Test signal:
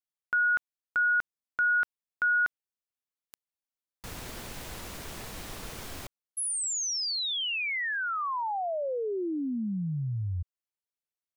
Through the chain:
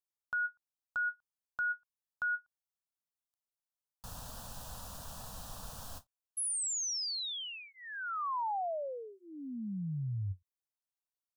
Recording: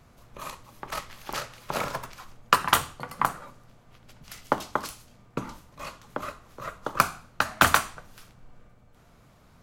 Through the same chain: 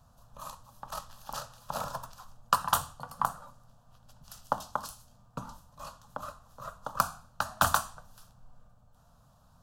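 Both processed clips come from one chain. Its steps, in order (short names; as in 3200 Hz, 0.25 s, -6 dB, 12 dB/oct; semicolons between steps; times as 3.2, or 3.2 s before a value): fixed phaser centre 890 Hz, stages 4; ending taper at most 490 dB/s; gain -3 dB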